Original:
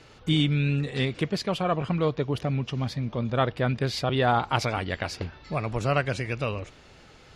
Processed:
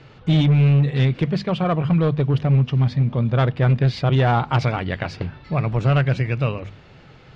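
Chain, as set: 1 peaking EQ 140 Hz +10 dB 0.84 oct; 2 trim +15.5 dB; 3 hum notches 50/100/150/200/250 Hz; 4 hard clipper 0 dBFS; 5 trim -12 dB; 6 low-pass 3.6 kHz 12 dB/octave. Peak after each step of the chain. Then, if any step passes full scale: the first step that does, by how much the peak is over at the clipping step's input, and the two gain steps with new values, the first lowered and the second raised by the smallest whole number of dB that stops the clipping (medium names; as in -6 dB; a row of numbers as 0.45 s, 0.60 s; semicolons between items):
-7.0 dBFS, +8.5 dBFS, +7.5 dBFS, 0.0 dBFS, -12.0 dBFS, -11.5 dBFS; step 2, 7.5 dB; step 2 +7.5 dB, step 5 -4 dB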